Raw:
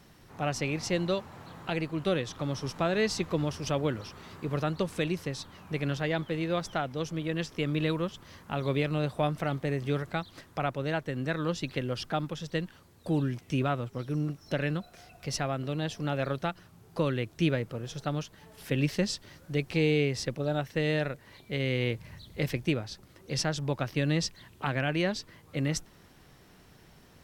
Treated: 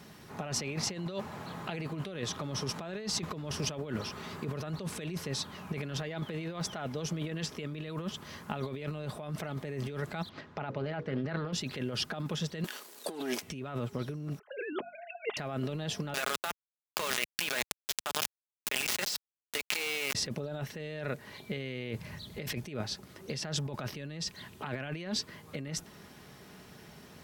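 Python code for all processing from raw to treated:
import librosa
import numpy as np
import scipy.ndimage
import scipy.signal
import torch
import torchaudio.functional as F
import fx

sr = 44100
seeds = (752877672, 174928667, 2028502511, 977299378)

y = fx.chain(x, sr, fx.air_absorb(metres=200.0),
    fx.hum_notches(base_hz=60, count=9),
    fx.doppler_dist(depth_ms=0.22), at=(10.29, 11.53))
y = fx.chain(y, sr, fx.high_shelf(hz=3800.0, db=10.0),
    fx.leveller(passes=2),
    fx.highpass(hz=310.0, slope=24), at=(12.64, 13.42))
y = fx.chain(y, sr, fx.sine_speech(),
    fx.hum_notches(base_hz=50, count=5), at=(14.39, 15.37))
y = fx.chain(y, sr, fx.highpass(hz=970.0, slope=12),
    fx.quant_dither(seeds[0], bits=6, dither='none'),
    fx.env_flatten(amount_pct=70), at=(16.14, 20.15))
y = scipy.signal.sosfilt(scipy.signal.butter(2, 83.0, 'highpass', fs=sr, output='sos'), y)
y = fx.over_compress(y, sr, threshold_db=-36.0, ratio=-1.0)
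y = y + 0.3 * np.pad(y, (int(4.8 * sr / 1000.0), 0))[:len(y)]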